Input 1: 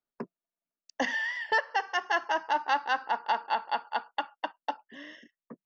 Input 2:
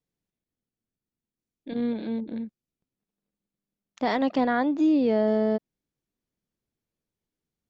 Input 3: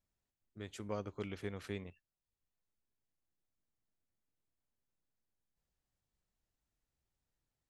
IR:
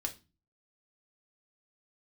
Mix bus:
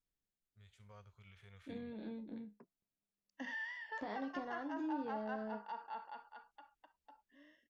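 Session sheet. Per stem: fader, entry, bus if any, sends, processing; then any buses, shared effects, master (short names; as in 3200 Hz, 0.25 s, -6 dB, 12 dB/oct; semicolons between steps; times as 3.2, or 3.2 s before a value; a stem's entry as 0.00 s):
6.07 s -8 dB -> 6.7 s -15.5 dB, 2.40 s, bus A, no send, dry
-2.5 dB, 0.00 s, no bus, no send, compressor 10:1, threshold -28 dBFS, peak gain reduction 10 dB; resonator bank C#2 sus4, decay 0.21 s
+2.0 dB, 0.00 s, bus A, no send, passive tone stack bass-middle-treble 10-0-10; limiter -45.5 dBFS, peak gain reduction 7.5 dB
bus A: 0.0 dB, harmonic-percussive split percussive -16 dB; limiter -35.5 dBFS, peak gain reduction 10 dB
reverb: off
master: high shelf 4300 Hz -5.5 dB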